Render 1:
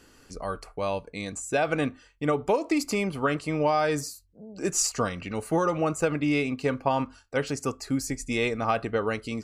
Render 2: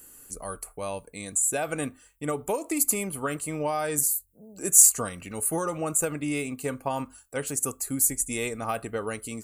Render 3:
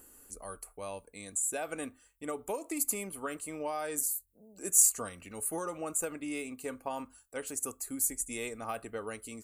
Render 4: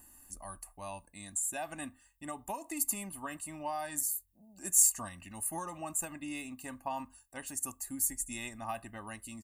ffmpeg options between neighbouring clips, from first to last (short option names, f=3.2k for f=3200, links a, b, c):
-af "aexciter=amount=15.3:drive=5.5:freq=7.6k,volume=-4.5dB"
-filter_complex "[0:a]equalizer=f=140:t=o:w=0.38:g=-15,acrossover=split=1300[a][b];[a]acompressor=mode=upward:threshold=-50dB:ratio=2.5[c];[c][b]amix=inputs=2:normalize=0,volume=-7.5dB"
-af "aecho=1:1:1.1:0.96,volume=-3.5dB"